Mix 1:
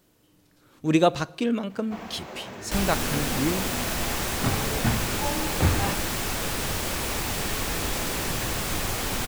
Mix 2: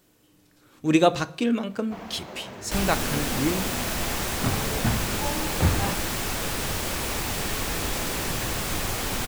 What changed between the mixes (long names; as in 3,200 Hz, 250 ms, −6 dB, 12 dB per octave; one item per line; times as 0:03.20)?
speech: send +11.0 dB
first sound: send off